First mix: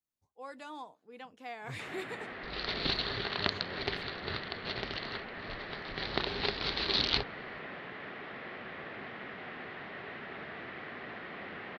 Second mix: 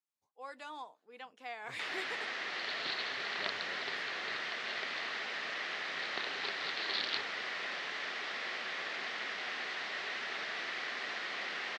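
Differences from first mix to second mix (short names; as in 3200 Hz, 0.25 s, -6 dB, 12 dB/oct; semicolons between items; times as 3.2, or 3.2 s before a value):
first sound: remove air absorption 490 m; second sound -8.0 dB; master: add weighting filter A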